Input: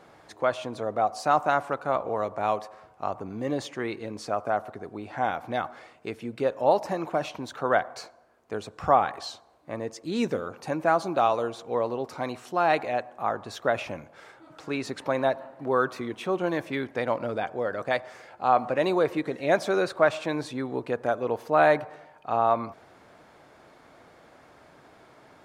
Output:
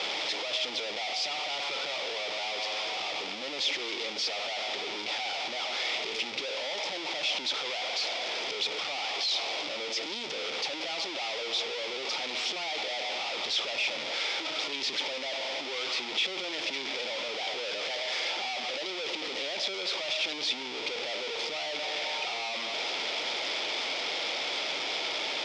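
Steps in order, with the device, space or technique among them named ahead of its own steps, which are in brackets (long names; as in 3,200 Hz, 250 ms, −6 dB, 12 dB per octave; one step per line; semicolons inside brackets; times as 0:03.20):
home computer beeper (sign of each sample alone; loudspeaker in its box 520–5,500 Hz, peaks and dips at 690 Hz −4 dB, 1,100 Hz −8 dB, 1,600 Hz −10 dB, 2,300 Hz +7 dB, 3,400 Hz +10 dB, 5,100 Hz +8 dB)
level −4 dB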